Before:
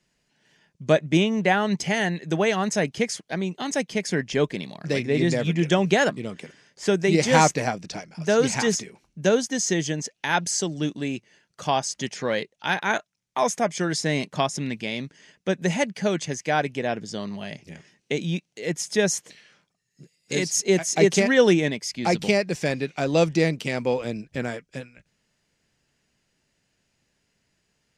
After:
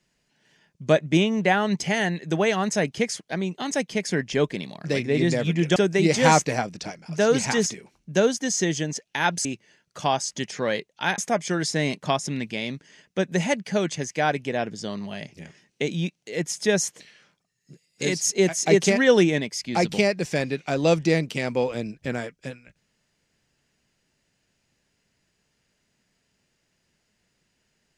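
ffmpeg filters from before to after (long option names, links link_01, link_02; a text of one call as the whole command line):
ffmpeg -i in.wav -filter_complex "[0:a]asplit=4[link_01][link_02][link_03][link_04];[link_01]atrim=end=5.762[link_05];[link_02]atrim=start=6.848:end=10.542[link_06];[link_03]atrim=start=11.078:end=12.812[link_07];[link_04]atrim=start=13.478[link_08];[link_05][link_06]acrossfade=duration=0.004:curve1=hsin:curve2=hsin[link_09];[link_09][link_07]acrossfade=duration=0.004:curve1=hsin:curve2=hsin[link_10];[link_10][link_08]acrossfade=duration=0.004:curve1=hsin:curve2=hsin" out.wav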